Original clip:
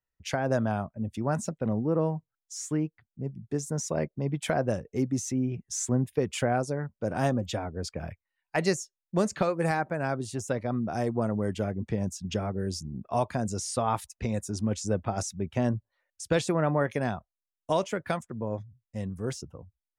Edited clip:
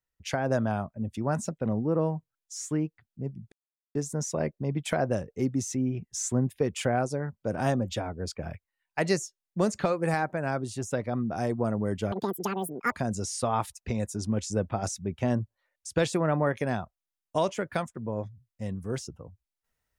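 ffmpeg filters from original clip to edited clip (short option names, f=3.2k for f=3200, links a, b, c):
-filter_complex "[0:a]asplit=4[a][b][c][d];[a]atrim=end=3.52,asetpts=PTS-STARTPTS,afade=t=out:st=3.516:d=0.004:c=hsin,apad=pad_dur=0.43[e];[b]atrim=start=3.52:end=11.694,asetpts=PTS-STARTPTS,afade=t=in:d=0.004:c=hsin[f];[c]atrim=start=11.69:end=13.26,asetpts=PTS-STARTPTS,asetrate=86877,aresample=44100[g];[d]atrim=start=13.256[h];[e][f]concat=n=2:v=0:a=1[i];[i][g]acrossfade=d=0.004:c1=hsin:c2=hsin[j];[j][h]acrossfade=d=0.004:c1=hsin:c2=hsin"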